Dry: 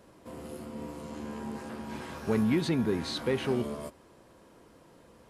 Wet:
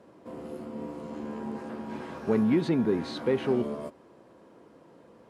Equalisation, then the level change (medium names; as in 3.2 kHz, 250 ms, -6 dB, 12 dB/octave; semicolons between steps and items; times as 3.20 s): band-pass filter 380 Hz, Q 0.53; tilt EQ +3 dB/octave; bass shelf 310 Hz +9.5 dB; +4.0 dB